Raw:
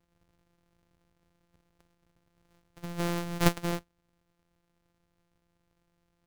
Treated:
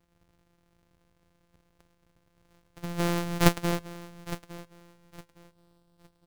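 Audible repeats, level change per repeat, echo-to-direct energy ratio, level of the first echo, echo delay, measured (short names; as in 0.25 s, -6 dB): 2, -12.0 dB, -15.0 dB, -15.5 dB, 0.861 s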